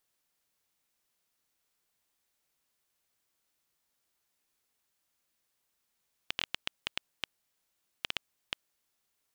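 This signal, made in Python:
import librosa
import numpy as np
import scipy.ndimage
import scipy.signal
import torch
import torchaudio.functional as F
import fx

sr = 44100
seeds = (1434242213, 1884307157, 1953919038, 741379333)

y = fx.geiger_clicks(sr, seeds[0], length_s=2.58, per_s=5.1, level_db=-12.5)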